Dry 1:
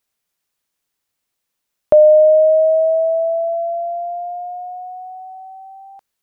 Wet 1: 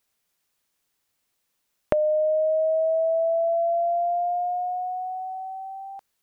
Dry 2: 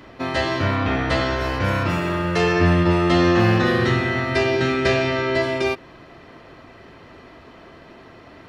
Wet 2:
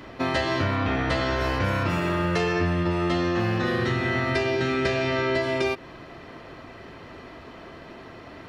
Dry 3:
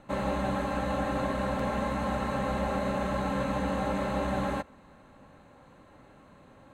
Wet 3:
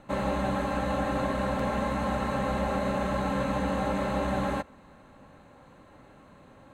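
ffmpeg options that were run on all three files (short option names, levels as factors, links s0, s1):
-af "acompressor=threshold=0.0794:ratio=12,volume=1.19"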